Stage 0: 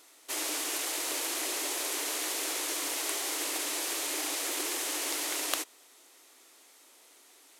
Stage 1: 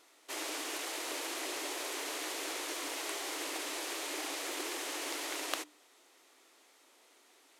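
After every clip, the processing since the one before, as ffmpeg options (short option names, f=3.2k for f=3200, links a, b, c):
-af "highshelf=f=6k:g=-10.5,bandreject=f=50:t=h:w=6,bandreject=f=100:t=h:w=6,bandreject=f=150:t=h:w=6,bandreject=f=200:t=h:w=6,bandreject=f=250:t=h:w=6,bandreject=f=300:t=h:w=6,volume=-2dB"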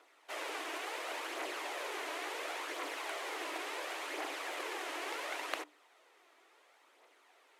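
-filter_complex "[0:a]aphaser=in_gain=1:out_gain=1:delay=3.2:decay=0.36:speed=0.71:type=triangular,acrossover=split=360 2900:gain=0.0794 1 0.224[a][b][c];[a][b][c]amix=inputs=3:normalize=0,volume=1.5dB"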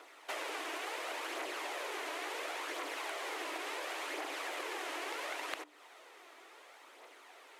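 -af "acompressor=threshold=-47dB:ratio=6,volume=9dB"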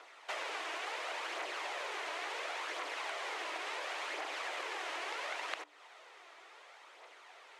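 -af "highpass=500,lowpass=6.8k,volume=1dB"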